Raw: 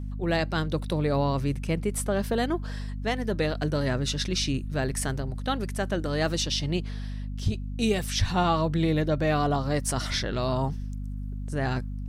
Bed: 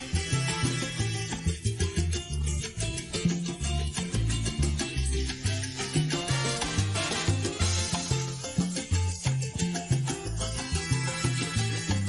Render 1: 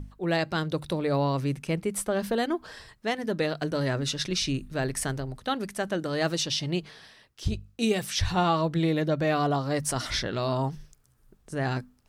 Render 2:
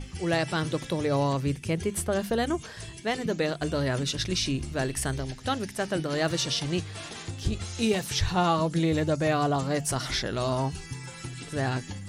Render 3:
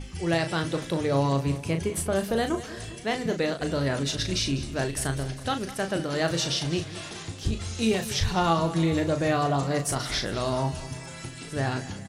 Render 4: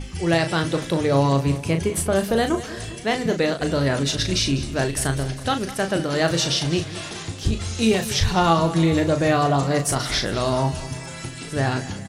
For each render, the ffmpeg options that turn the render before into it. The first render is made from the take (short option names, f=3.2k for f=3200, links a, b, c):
-af "bandreject=f=50:t=h:w=6,bandreject=f=100:t=h:w=6,bandreject=f=150:t=h:w=6,bandreject=f=200:t=h:w=6,bandreject=f=250:t=h:w=6"
-filter_complex "[1:a]volume=-10.5dB[a];[0:a][a]amix=inputs=2:normalize=0"
-filter_complex "[0:a]asplit=2[a][b];[b]adelay=36,volume=-8dB[c];[a][c]amix=inputs=2:normalize=0,aecho=1:1:200|400|600|800|1000:0.168|0.094|0.0526|0.0295|0.0165"
-af "volume=5.5dB"